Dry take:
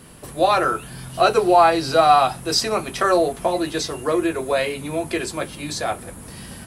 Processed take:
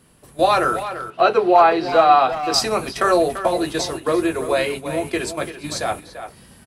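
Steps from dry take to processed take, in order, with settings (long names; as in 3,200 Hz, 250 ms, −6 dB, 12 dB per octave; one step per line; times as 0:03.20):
noise gate −29 dBFS, range −11 dB
0:01.10–0:02.54: three-way crossover with the lows and the highs turned down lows −16 dB, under 180 Hz, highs −22 dB, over 4,000 Hz
far-end echo of a speakerphone 340 ms, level −10 dB
level +1 dB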